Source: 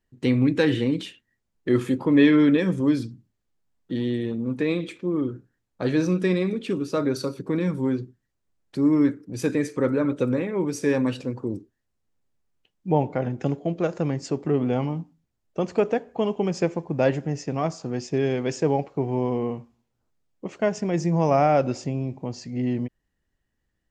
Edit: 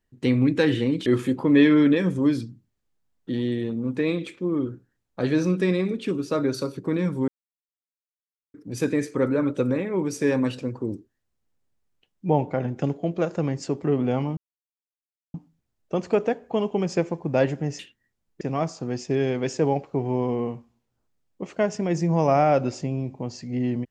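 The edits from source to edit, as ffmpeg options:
ffmpeg -i in.wav -filter_complex "[0:a]asplit=7[link_01][link_02][link_03][link_04][link_05][link_06][link_07];[link_01]atrim=end=1.062[link_08];[link_02]atrim=start=1.678:end=7.9,asetpts=PTS-STARTPTS,afade=type=out:start_time=6.218:duration=0.004:curve=hsin[link_09];[link_03]atrim=start=7.9:end=9.16,asetpts=PTS-STARTPTS,volume=0[link_10];[link_04]atrim=start=9.16:end=14.99,asetpts=PTS-STARTPTS,afade=type=in:duration=0.004:curve=hsin,afade=type=out:start_time=5.826:duration=0.004:curve=hsin,apad=pad_dur=0.97[link_11];[link_05]atrim=start=14.99:end=17.442,asetpts=PTS-STARTPTS,afade=type=in:duration=0.004:curve=hsin[link_12];[link_06]atrim=start=1.058:end=1.682[link_13];[link_07]atrim=start=17.438[link_14];[link_09][link_10][link_11][link_12]concat=n=4:v=0:a=1[link_15];[link_08][link_15]acrossfade=duration=0.004:curve1=hsin:curve2=hsin[link_16];[link_16][link_13]acrossfade=duration=0.004:curve1=hsin:curve2=hsin[link_17];[link_17][link_14]acrossfade=duration=0.004:curve1=hsin:curve2=hsin" out.wav

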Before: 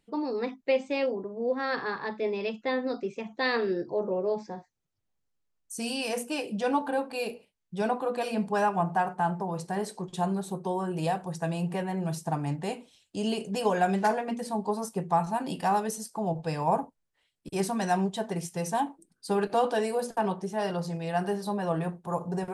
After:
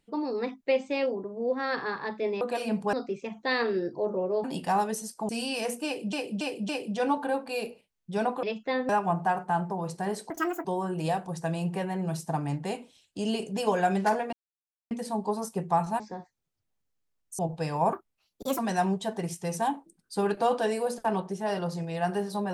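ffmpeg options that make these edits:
ffmpeg -i in.wav -filter_complex "[0:a]asplit=17[link_01][link_02][link_03][link_04][link_05][link_06][link_07][link_08][link_09][link_10][link_11][link_12][link_13][link_14][link_15][link_16][link_17];[link_01]atrim=end=2.412[link_18];[link_02]atrim=start=8.068:end=8.592[link_19];[link_03]atrim=start=2.868:end=4.382[link_20];[link_04]atrim=start=15.398:end=16.252[link_21];[link_05]atrim=start=5.768:end=6.612[link_22];[link_06]atrim=start=6.328:end=6.612[link_23];[link_07]atrim=start=6.328:end=6.612[link_24];[link_08]atrim=start=6.328:end=8.072[link_25];[link_09]atrim=start=2.408:end=2.872[link_26];[link_10]atrim=start=8.588:end=10.004[link_27];[link_11]atrim=start=10:end=10.63,asetpts=PTS-STARTPTS,asetrate=79821,aresample=44100[link_28];[link_12]atrim=start=10.626:end=14.31,asetpts=PTS-STARTPTS,afade=type=out:start_time=3.68:duration=0.004:curve=hsin,apad=pad_dur=0.58[link_29];[link_13]atrim=start=14.31:end=15.402,asetpts=PTS-STARTPTS,afade=type=in:duration=0.004:curve=hsin[link_30];[link_14]atrim=start=4.378:end=5.772[link_31];[link_15]atrim=start=16.248:end=16.794[link_32];[link_16]atrim=start=16.79:end=17.71,asetpts=PTS-STARTPTS,asetrate=61740,aresample=44100,atrim=end_sample=28980,asetpts=PTS-STARTPTS[link_33];[link_17]atrim=start=17.706[link_34];[link_18][link_19]acrossfade=duration=0.004:curve1=hsin:curve2=hsin[link_35];[link_35][link_20]acrossfade=duration=0.004:curve1=hsin:curve2=hsin[link_36];[link_36][link_21]acrossfade=duration=0.004:curve1=hsin:curve2=hsin[link_37];[link_37][link_22]acrossfade=duration=0.004:curve1=hsin:curve2=hsin[link_38];[link_38][link_23]acrossfade=duration=0.004:curve1=hsin:curve2=hsin[link_39];[link_39][link_24]acrossfade=duration=0.004:curve1=hsin:curve2=hsin[link_40];[link_40][link_25]acrossfade=duration=0.004:curve1=hsin:curve2=hsin[link_41];[link_41][link_26]acrossfade=duration=0.004:curve1=hsin:curve2=hsin[link_42];[link_42][link_27]acrossfade=duration=0.004:curve1=hsin:curve2=hsin[link_43];[link_43][link_28]acrossfade=duration=0.004:curve1=hsin:curve2=hsin[link_44];[link_29][link_30]concat=n=2:v=0:a=1[link_45];[link_44][link_45]acrossfade=duration=0.004:curve1=hsin:curve2=hsin[link_46];[link_46][link_31]acrossfade=duration=0.004:curve1=hsin:curve2=hsin[link_47];[link_47][link_32]acrossfade=duration=0.004:curve1=hsin:curve2=hsin[link_48];[link_48][link_33]acrossfade=duration=0.004:curve1=hsin:curve2=hsin[link_49];[link_49][link_34]acrossfade=duration=0.004:curve1=hsin:curve2=hsin" out.wav

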